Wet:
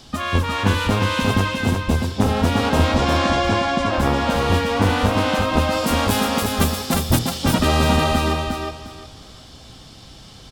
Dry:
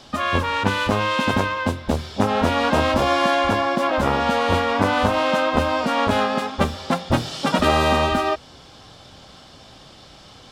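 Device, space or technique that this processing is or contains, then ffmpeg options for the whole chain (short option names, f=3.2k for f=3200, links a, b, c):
smiley-face EQ: -filter_complex "[0:a]lowshelf=f=140:g=8,equalizer=f=1.1k:t=o:w=2.4:g=-3.5,highshelf=f=7.9k:g=8.5,asettb=1/sr,asplit=3[a][b][c];[a]atrim=end=5.724[d];[b]atrim=start=5.72:end=7.19,asetpts=PTS-STARTPTS,afade=t=in:d=0.004:c=qsin,afade=t=out:st=1.466:d=0.004:c=qsin,aemphasis=mode=production:type=50fm[e];[c]atrim=start=7.186[f];[d][e]acrossfade=d=0.004:c1=hsin:c2=qsin[g];[g][f]acrossfade=d=0.004:c1=qsin:c2=hsin,bandreject=f=580:w=12,asettb=1/sr,asplit=3[h][i][j];[h]atrim=end=2.824[k];[i]atrim=start=2.82:end=3.93,asetpts=PTS-STARTPTS,afade=t=in:d=0.004:c=qsin,afade=t=out:st=1.106:d=0.004:c=qsin,lowpass=f=7.9k:w=0.5412,lowpass=f=7.9k:w=1.3066[l];[j]atrim=start=3.926[m];[k][l]acrossfade=d=0.004:c1=hsin:c2=qsin[n];[n][m]acrossfade=d=0.004:c1=qsin:c2=hsin,aecho=1:1:355|710|1065:0.631|0.145|0.0334"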